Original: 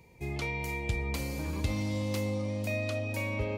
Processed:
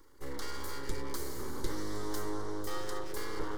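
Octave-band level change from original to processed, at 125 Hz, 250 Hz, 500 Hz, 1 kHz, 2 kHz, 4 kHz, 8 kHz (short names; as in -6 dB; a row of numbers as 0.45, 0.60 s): -14.0, -6.0, -4.5, +1.0, -9.5, -2.0, +1.0 dB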